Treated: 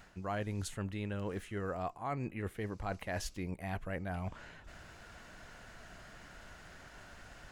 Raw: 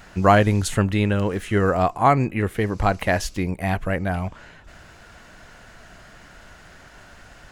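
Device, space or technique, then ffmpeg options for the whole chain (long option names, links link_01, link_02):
compression on the reversed sound: -af "areverse,acompressor=threshold=-29dB:ratio=5,areverse,volume=-7dB"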